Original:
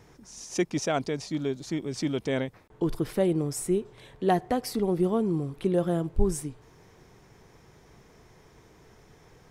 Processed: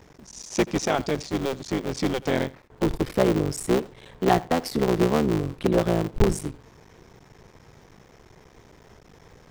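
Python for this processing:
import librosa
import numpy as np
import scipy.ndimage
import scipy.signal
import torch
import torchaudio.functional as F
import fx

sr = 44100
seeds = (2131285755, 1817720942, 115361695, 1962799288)

y = fx.cycle_switch(x, sr, every=3, mode='muted')
y = fx.peak_eq(y, sr, hz=11000.0, db=-7.0, octaves=0.65)
y = y + 10.0 ** (-21.0 / 20.0) * np.pad(y, (int(83 * sr / 1000.0), 0))[:len(y)]
y = y * 10.0 ** (5.5 / 20.0)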